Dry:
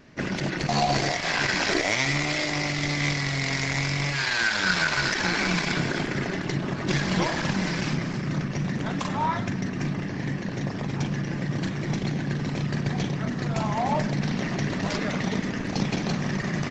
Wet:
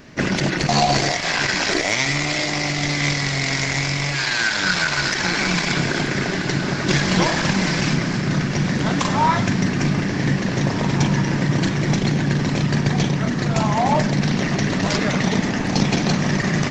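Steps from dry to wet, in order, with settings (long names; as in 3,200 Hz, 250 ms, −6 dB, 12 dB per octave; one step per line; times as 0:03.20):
high-shelf EQ 6,100 Hz +6.5 dB
on a send: feedback delay with all-pass diffusion 1,844 ms, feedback 48%, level −13.5 dB
on the sum: speech leveller 2 s
level +5.5 dB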